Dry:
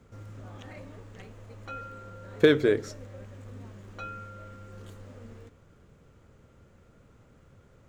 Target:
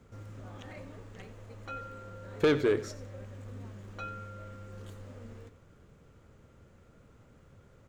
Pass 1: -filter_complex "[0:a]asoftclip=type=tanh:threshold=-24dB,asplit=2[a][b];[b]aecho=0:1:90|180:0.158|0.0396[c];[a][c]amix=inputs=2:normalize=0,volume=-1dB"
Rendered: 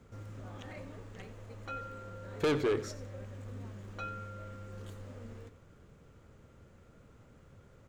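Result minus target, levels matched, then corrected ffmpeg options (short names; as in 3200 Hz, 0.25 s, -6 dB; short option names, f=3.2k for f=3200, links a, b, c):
soft clip: distortion +6 dB
-filter_complex "[0:a]asoftclip=type=tanh:threshold=-17.5dB,asplit=2[a][b];[b]aecho=0:1:90|180:0.158|0.0396[c];[a][c]amix=inputs=2:normalize=0,volume=-1dB"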